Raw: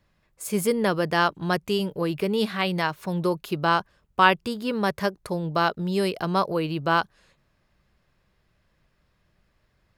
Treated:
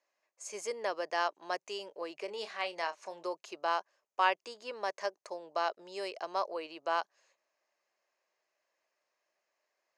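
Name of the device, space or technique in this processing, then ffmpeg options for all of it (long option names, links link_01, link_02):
phone speaker on a table: -filter_complex "[0:a]highpass=frequency=440:width=0.5412,highpass=frequency=440:width=1.3066,equalizer=frequency=450:width_type=q:width=4:gain=-4,equalizer=frequency=640:width_type=q:width=4:gain=3,equalizer=frequency=1400:width_type=q:width=4:gain=-6,equalizer=frequency=3500:width_type=q:width=4:gain=-8,equalizer=frequency=6400:width_type=q:width=4:gain=9,lowpass=frequency=7600:width=0.5412,lowpass=frequency=7600:width=1.3066,asettb=1/sr,asplit=3[link_01][link_02][link_03];[link_01]atrim=end=2.254[link_04];[link_02]atrim=start=2.25:end=3.27,asetpts=PTS-STARTPTS,afade=type=in:duration=0.004:curve=qsin,afade=type=out:start_time=1.016:duration=0.004:curve=qsin,asplit=2[link_05][link_06];[link_06]adelay=30,volume=-11dB[link_07];[link_05][link_07]amix=inputs=2:normalize=0,atrim=end_sample=44982[link_08];[link_03]atrim=start=3.266[link_09];[link_04][link_08]acrossfade=duration=0.004:curve1=hsin:curve2=qsin[link_10];[link_10][link_09]acrossfade=duration=0.004:curve1=qsin:curve2=hsin,volume=-8.5dB"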